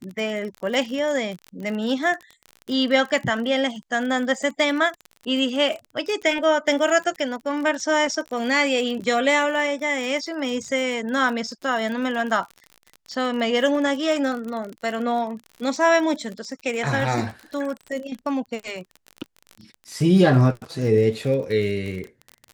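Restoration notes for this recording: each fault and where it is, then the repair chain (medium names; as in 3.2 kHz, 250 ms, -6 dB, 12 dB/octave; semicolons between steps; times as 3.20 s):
crackle 42 per s -29 dBFS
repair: de-click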